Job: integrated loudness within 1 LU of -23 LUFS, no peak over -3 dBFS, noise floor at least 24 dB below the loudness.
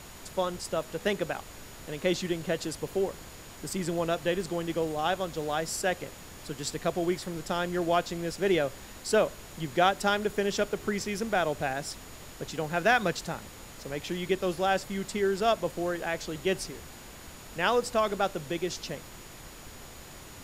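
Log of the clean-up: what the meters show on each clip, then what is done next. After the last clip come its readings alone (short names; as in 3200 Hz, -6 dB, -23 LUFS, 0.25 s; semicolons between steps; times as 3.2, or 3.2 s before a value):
steady tone 6900 Hz; tone level -56 dBFS; noise floor -47 dBFS; noise floor target -54 dBFS; loudness -30.0 LUFS; peak -9.0 dBFS; loudness target -23.0 LUFS
-> notch 6900 Hz, Q 30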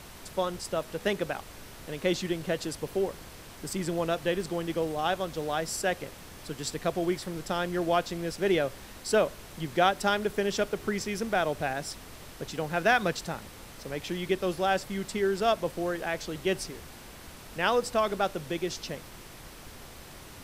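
steady tone none; noise floor -47 dBFS; noise floor target -54 dBFS
-> noise print and reduce 7 dB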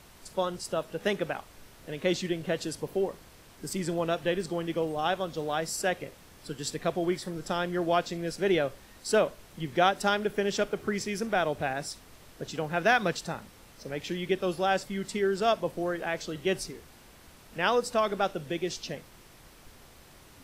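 noise floor -54 dBFS; loudness -30.0 LUFS; peak -9.0 dBFS; loudness target -23.0 LUFS
-> gain +7 dB; limiter -3 dBFS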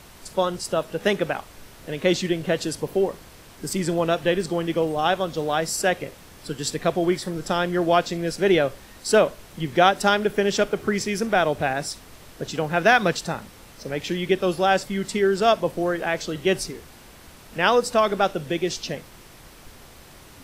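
loudness -23.0 LUFS; peak -3.0 dBFS; noise floor -47 dBFS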